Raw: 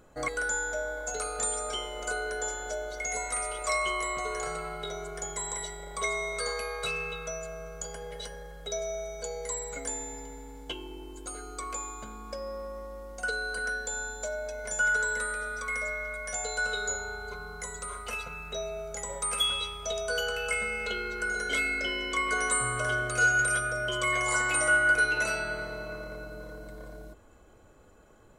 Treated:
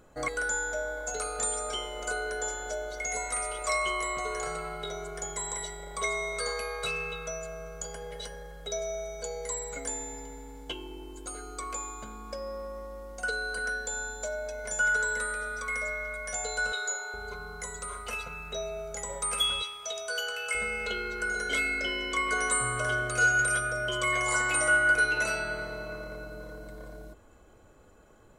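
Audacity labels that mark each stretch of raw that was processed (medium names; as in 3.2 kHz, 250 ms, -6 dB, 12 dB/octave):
16.720000	17.140000	high-pass 590 Hz
19.620000	20.550000	high-pass 1 kHz 6 dB/octave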